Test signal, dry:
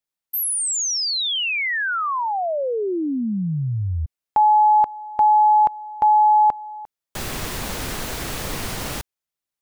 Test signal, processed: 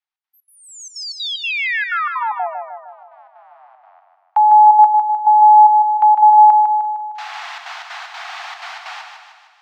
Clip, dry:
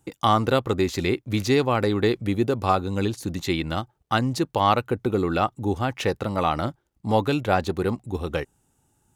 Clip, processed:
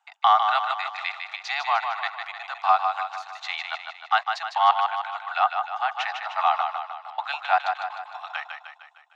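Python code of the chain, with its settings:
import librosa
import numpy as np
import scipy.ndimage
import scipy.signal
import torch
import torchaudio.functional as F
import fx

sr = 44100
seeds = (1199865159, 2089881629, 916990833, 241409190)

y = fx.octave_divider(x, sr, octaves=1, level_db=3.0)
y = scipy.signal.sosfilt(scipy.signal.butter(16, 700.0, 'highpass', fs=sr, output='sos'), y)
y = fx.high_shelf(y, sr, hz=8000.0, db=-8.0)
y = fx.notch(y, sr, hz=990.0, q=23.0)
y = fx.step_gate(y, sr, bpm=188, pattern='xx.xx.xxxxx.', floor_db=-24.0, edge_ms=4.5)
y = fx.air_absorb(y, sr, metres=180.0)
y = fx.echo_feedback(y, sr, ms=153, feedback_pct=54, wet_db=-6)
y = F.gain(torch.from_numpy(y), 4.5).numpy()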